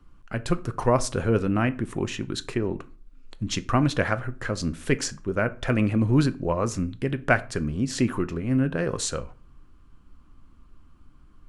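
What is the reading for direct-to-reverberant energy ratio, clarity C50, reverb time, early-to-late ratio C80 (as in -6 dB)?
11.5 dB, 20.0 dB, 0.40 s, 24.5 dB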